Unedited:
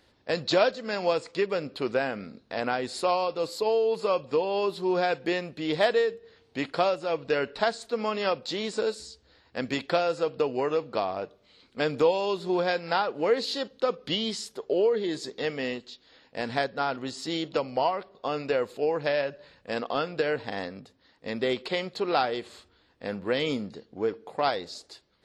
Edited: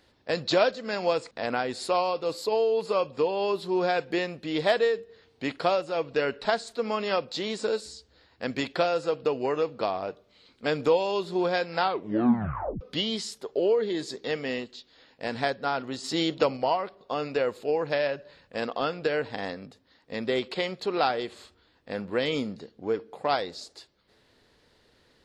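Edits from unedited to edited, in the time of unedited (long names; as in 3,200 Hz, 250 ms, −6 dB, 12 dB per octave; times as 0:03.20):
0:01.31–0:02.45: remove
0:12.95: tape stop 1.00 s
0:17.18–0:17.71: clip gain +4 dB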